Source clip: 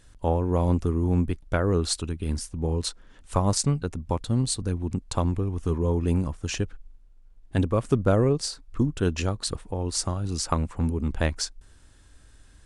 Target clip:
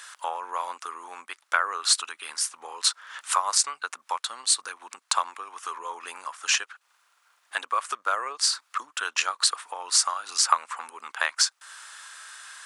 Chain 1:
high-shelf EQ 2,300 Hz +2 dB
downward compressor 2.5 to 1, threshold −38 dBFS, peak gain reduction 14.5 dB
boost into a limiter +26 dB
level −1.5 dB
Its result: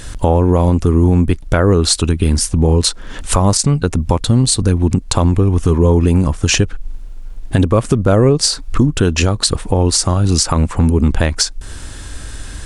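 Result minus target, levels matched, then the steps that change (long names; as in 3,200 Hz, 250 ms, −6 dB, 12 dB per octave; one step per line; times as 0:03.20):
1,000 Hz band −7.5 dB
add after downward compressor: four-pole ladder high-pass 1,000 Hz, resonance 45%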